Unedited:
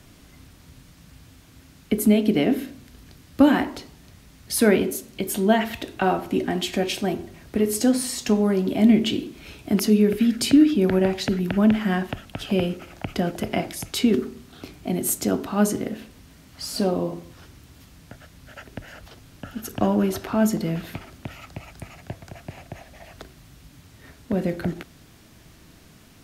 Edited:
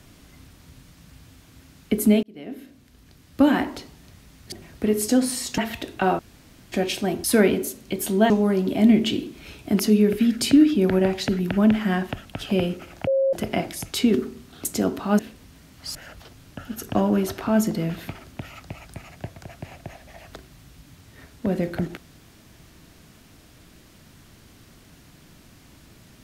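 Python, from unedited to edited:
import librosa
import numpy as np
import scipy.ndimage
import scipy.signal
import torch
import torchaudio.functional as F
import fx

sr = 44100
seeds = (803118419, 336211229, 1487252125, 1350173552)

y = fx.edit(x, sr, fx.fade_in_span(start_s=2.23, length_s=1.47),
    fx.swap(start_s=4.52, length_s=1.06, other_s=7.24, other_length_s=1.06),
    fx.room_tone_fill(start_s=6.19, length_s=0.53),
    fx.bleep(start_s=13.07, length_s=0.26, hz=539.0, db=-17.0),
    fx.cut(start_s=14.65, length_s=0.47),
    fx.cut(start_s=15.66, length_s=0.28),
    fx.cut(start_s=16.7, length_s=2.11), tone=tone)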